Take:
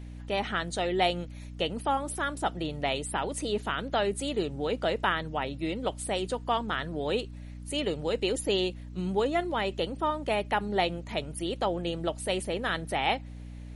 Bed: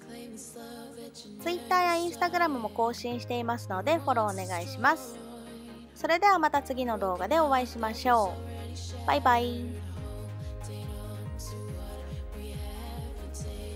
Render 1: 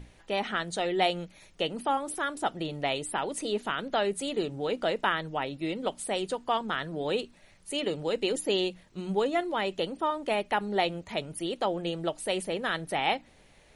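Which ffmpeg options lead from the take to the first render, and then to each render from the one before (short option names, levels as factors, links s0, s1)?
-af "bandreject=f=60:t=h:w=6,bandreject=f=120:t=h:w=6,bandreject=f=180:t=h:w=6,bandreject=f=240:t=h:w=6,bandreject=f=300:t=h:w=6"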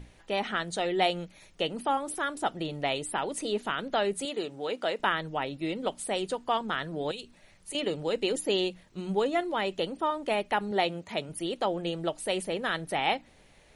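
-filter_complex "[0:a]asettb=1/sr,asplit=3[s0][s1][s2];[s0]atrim=end=4.254[s3];[s1]atrim=start=4.25:end=5,asetpts=PTS-STARTPTS,afade=t=in:d=0.004:c=qsin,afade=t=out:st=0.746:d=0.004:c=qsin,highpass=f=410:p=1[s4];[s2]atrim=start=4.996[s5];[s3][s4]acrossfade=d=0.004:c1=hsin:c2=qsin[s6];[s6][s5]acrossfade=d=0.004:c1=qsin:c2=hsin,asettb=1/sr,asplit=3[s7][s8][s9];[s7]atrim=end=7.114[s10];[s8]atrim=start=7.11:end=7.75,asetpts=PTS-STARTPTS,afade=t=in:d=0.004:c=qsin,afade=t=out:st=0.636:d=0.004:c=qsin,acrossover=split=150|3000[s11][s12][s13];[s12]acompressor=threshold=0.00708:ratio=10:attack=3.2:release=140:knee=2.83:detection=peak[s14];[s11][s14][s13]amix=inputs=3:normalize=0[s15];[s9]atrim=start=7.746[s16];[s10][s15]acrossfade=d=0.004:c1=hsin:c2=qsin[s17];[s17][s16]acrossfade=d=0.004:c1=qsin:c2=hsin,asettb=1/sr,asplit=3[s18][s19][s20];[s18]atrim=end=10.714[s21];[s19]atrim=start=10.71:end=11.29,asetpts=PTS-STARTPTS,afade=t=in:d=0.004:c=qsin,afade=t=out:st=0.576:d=0.004:c=qsin,highpass=110[s22];[s20]atrim=start=11.286[s23];[s21][s22]acrossfade=d=0.004:c1=hsin:c2=qsin[s24];[s24][s23]acrossfade=d=0.004:c1=qsin:c2=hsin"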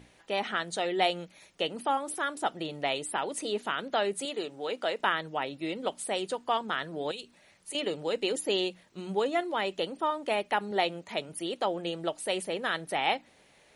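-af "highpass=f=260:p=1"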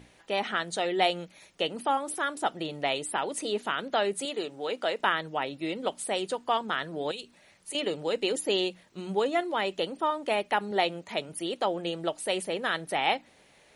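-af "volume=1.19"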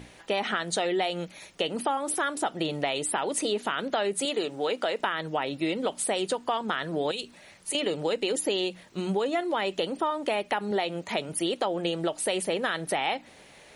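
-filter_complex "[0:a]asplit=2[s0][s1];[s1]alimiter=limit=0.0794:level=0:latency=1:release=35,volume=1.33[s2];[s0][s2]amix=inputs=2:normalize=0,acompressor=threshold=0.0631:ratio=6"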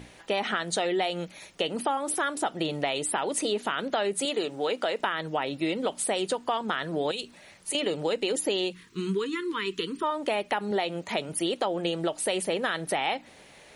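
-filter_complex "[0:a]asplit=3[s0][s1][s2];[s0]afade=t=out:st=8.72:d=0.02[s3];[s1]asuperstop=centerf=670:order=12:qfactor=1.3,afade=t=in:st=8.72:d=0.02,afade=t=out:st=10.02:d=0.02[s4];[s2]afade=t=in:st=10.02:d=0.02[s5];[s3][s4][s5]amix=inputs=3:normalize=0"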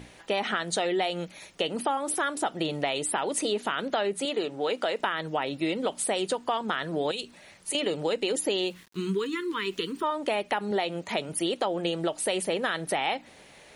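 -filter_complex "[0:a]asettb=1/sr,asplit=3[s0][s1][s2];[s0]atrim=end=4.014[s3];[s1]atrim=start=4.01:end=4.67,asetpts=PTS-STARTPTS,afade=t=in:d=0.004:c=qsin,afade=t=out:st=0.656:d=0.004:c=qsin,highshelf=f=6000:g=-8.5[s4];[s2]atrim=start=4.666[s5];[s3][s4]acrossfade=d=0.004:c1=hsin:c2=qsin[s6];[s6][s5]acrossfade=d=0.004:c1=qsin:c2=hsin,asettb=1/sr,asplit=3[s7][s8][s9];[s7]atrim=end=8.614[s10];[s8]atrim=start=8.61:end=10.04,asetpts=PTS-STARTPTS,afade=t=in:d=0.004:c=qsin,afade=t=out:st=1.426:d=0.004:c=qsin,aeval=exprs='val(0)*gte(abs(val(0)),0.00299)':c=same[s11];[s9]atrim=start=10.036[s12];[s10][s11]acrossfade=d=0.004:c1=hsin:c2=qsin[s13];[s13][s12]acrossfade=d=0.004:c1=qsin:c2=hsin"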